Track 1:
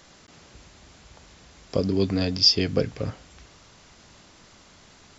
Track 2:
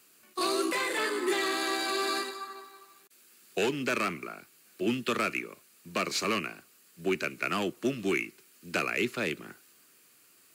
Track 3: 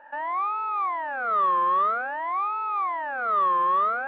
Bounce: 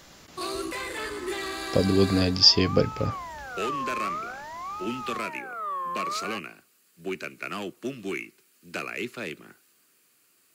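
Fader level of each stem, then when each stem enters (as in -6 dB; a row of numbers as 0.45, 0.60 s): +1.5, -3.5, -9.5 dB; 0.00, 0.00, 2.30 s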